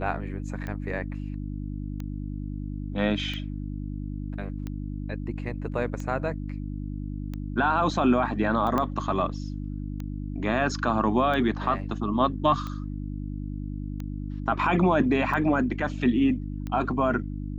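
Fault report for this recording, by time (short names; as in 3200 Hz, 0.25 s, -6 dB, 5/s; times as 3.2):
hum 50 Hz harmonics 6 -33 dBFS
tick 45 rpm -22 dBFS
8.78 pop -14 dBFS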